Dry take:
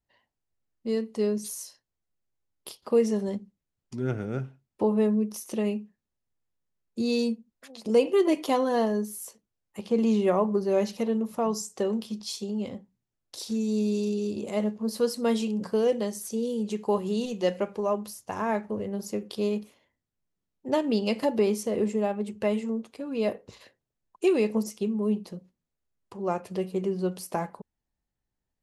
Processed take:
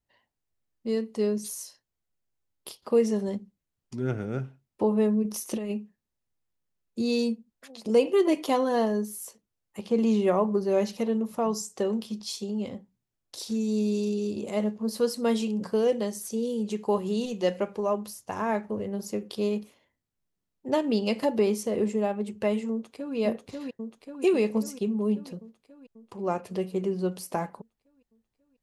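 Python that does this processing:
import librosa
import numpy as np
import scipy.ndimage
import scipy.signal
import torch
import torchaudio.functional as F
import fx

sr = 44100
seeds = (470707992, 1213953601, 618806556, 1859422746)

y = fx.over_compress(x, sr, threshold_db=-29.0, ratio=-0.5, at=(5.22, 5.7), fade=0.02)
y = fx.echo_throw(y, sr, start_s=22.71, length_s=0.45, ms=540, feedback_pct=65, wet_db=-2.0)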